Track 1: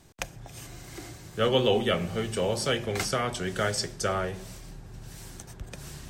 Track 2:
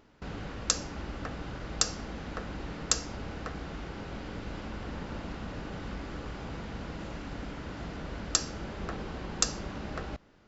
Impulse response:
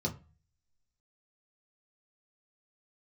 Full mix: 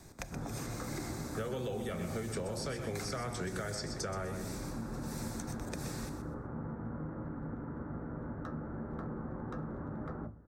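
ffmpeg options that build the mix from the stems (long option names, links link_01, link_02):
-filter_complex "[0:a]alimiter=limit=-22dB:level=0:latency=1:release=185,volume=2.5dB,asplit=2[link_01][link_02];[link_02]volume=-10dB[link_03];[1:a]lowpass=frequency=1500:width=0.5412,lowpass=frequency=1500:width=1.3066,lowshelf=frequency=180:gain=-7.5,asoftclip=type=hard:threshold=-33dB,adelay=100,volume=-4.5dB,asplit=2[link_04][link_05];[link_05]volume=-4.5dB[link_06];[2:a]atrim=start_sample=2205[link_07];[link_06][link_07]afir=irnorm=-1:irlink=0[link_08];[link_03]aecho=0:1:125|250|375|500:1|0.22|0.0484|0.0106[link_09];[link_01][link_04][link_08][link_09]amix=inputs=4:normalize=0,equalizer=frequency=3000:width=5.2:gain=-15,acrossover=split=180|5800[link_10][link_11][link_12];[link_10]acompressor=threshold=-42dB:ratio=4[link_13];[link_11]acompressor=threshold=-38dB:ratio=4[link_14];[link_12]acompressor=threshold=-50dB:ratio=4[link_15];[link_13][link_14][link_15]amix=inputs=3:normalize=0"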